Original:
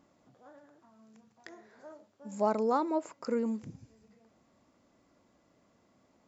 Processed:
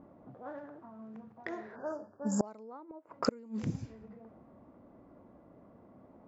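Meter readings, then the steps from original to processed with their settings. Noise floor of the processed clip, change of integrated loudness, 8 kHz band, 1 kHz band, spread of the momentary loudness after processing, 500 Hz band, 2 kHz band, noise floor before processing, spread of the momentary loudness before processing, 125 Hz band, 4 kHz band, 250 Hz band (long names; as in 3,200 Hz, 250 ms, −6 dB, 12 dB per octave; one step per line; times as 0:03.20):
−59 dBFS, −7.5 dB, can't be measured, −8.5 dB, 23 LU, −6.0 dB, +2.0 dB, −70 dBFS, 19 LU, +8.0 dB, +7.0 dB, −1.5 dB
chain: gate with flip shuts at −26 dBFS, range −31 dB
time-frequency box erased 0:01.76–0:02.45, 1,800–4,600 Hz
low-pass that shuts in the quiet parts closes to 740 Hz, open at −41.5 dBFS
level +11.5 dB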